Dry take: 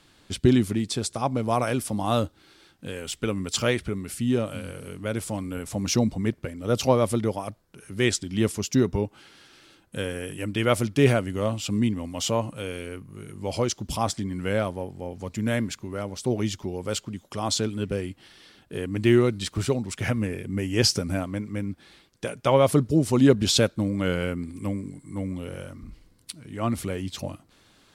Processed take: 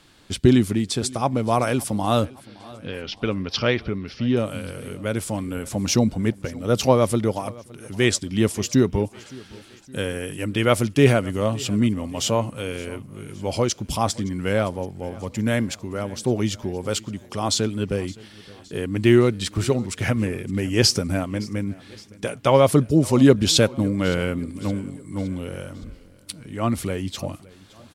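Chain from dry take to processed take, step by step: 2.25–4.37 s: elliptic low-pass 5.4 kHz, stop band 40 dB; feedback delay 566 ms, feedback 53%, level -22 dB; trim +3.5 dB

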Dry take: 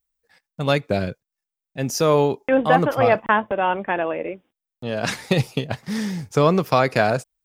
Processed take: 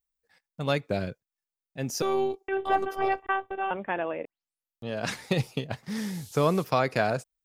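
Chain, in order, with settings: 2.02–3.71 s: robot voice 388 Hz; 4.25 s: tape start 0.62 s; 5.96–6.63 s: band noise 3.3–13 kHz -43 dBFS; trim -7 dB

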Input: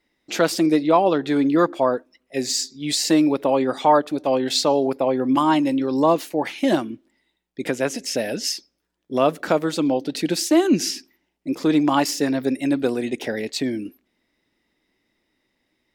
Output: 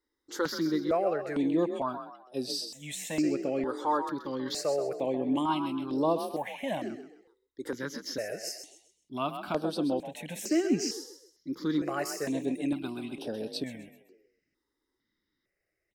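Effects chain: frequency-shifting echo 130 ms, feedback 35%, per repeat +40 Hz, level -9 dB; stepped phaser 2.2 Hz 670–7000 Hz; trim -8.5 dB

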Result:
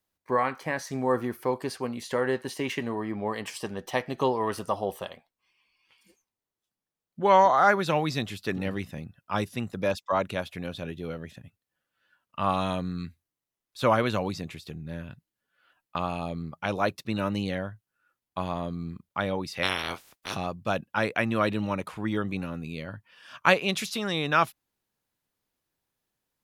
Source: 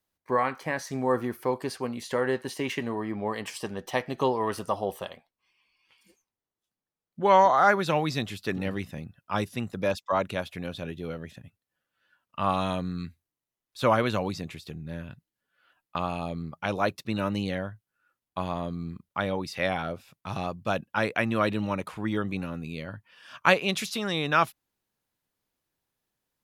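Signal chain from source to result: 19.62–20.34 s: spectral peaks clipped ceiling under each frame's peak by 29 dB

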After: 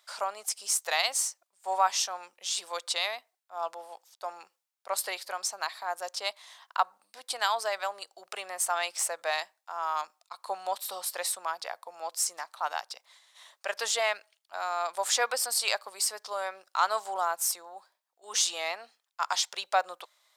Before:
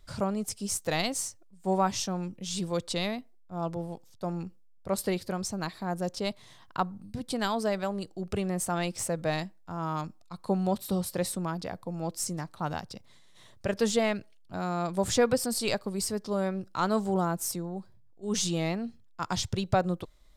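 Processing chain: high-pass 730 Hz 24 dB/octave; trim +4.5 dB

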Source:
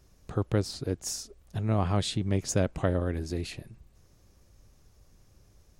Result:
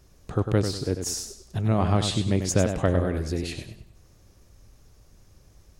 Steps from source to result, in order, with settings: modulated delay 98 ms, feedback 34%, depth 93 cents, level -7.5 dB; trim +4 dB

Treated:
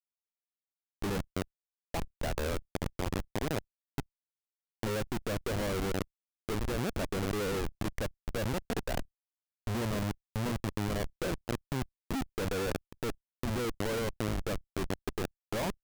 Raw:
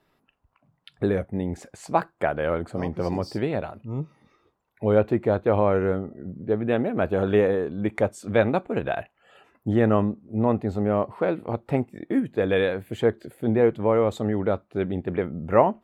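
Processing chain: Schmitt trigger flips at -23 dBFS; level held to a coarse grid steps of 16 dB

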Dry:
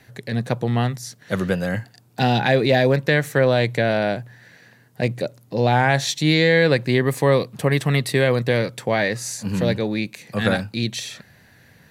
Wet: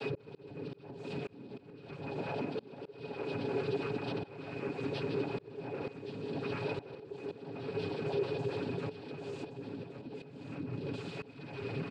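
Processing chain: one-bit comparator; ever faster or slower copies 191 ms, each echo +5 st, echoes 3; pitch-class resonator F#, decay 0.11 s; feedback delay 153 ms, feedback 54%, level -10 dB; noise-vocoded speech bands 8; compression 10:1, threshold -30 dBFS, peak gain reduction 12.5 dB; comb 7.2 ms, depth 40%; small resonant body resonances 410/2500 Hz, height 15 dB, ringing for 45 ms; slow attack 579 ms; delay 1120 ms -11 dB; trim -6.5 dB

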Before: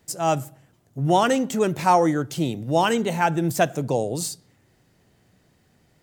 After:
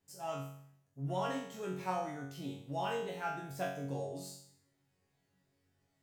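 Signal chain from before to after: dynamic bell 8.3 kHz, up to -6 dB, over -45 dBFS, Q 1; chord resonator F#2 fifth, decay 0.61 s; trim -1.5 dB

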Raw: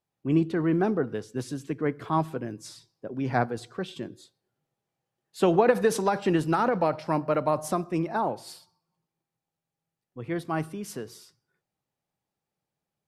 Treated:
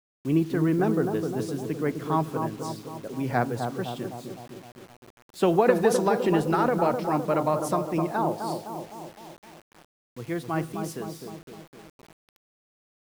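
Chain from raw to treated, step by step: bucket-brigade echo 256 ms, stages 2048, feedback 58%, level -5.5 dB; word length cut 8-bit, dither none

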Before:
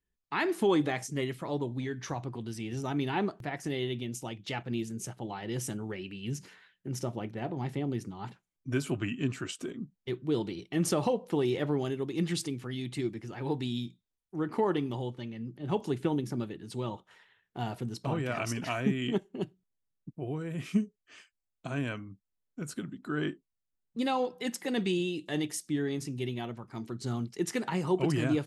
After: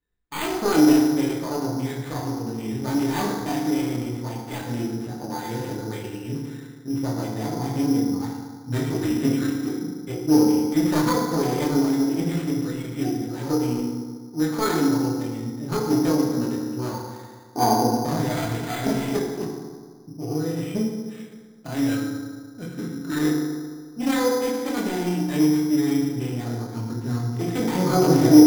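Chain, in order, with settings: self-modulated delay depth 0.58 ms; chorus voices 4, 0.39 Hz, delay 24 ms, depth 2.1 ms; time-frequency box 17.36–17.88 s, 220–1200 Hz +12 dB; FDN reverb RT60 1.7 s, low-frequency decay 1×, high-frequency decay 0.35×, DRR -2 dB; careless resampling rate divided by 8×, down filtered, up hold; trim +6 dB

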